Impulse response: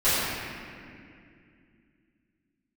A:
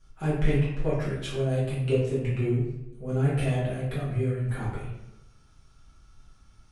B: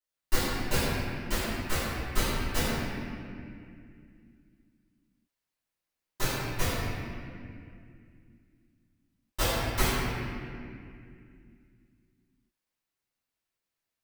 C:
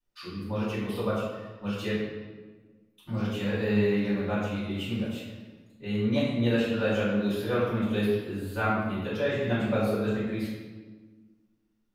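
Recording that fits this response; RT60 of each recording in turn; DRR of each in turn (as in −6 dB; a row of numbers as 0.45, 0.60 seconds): B; 0.85, 2.4, 1.4 seconds; −10.5, −17.0, −14.5 decibels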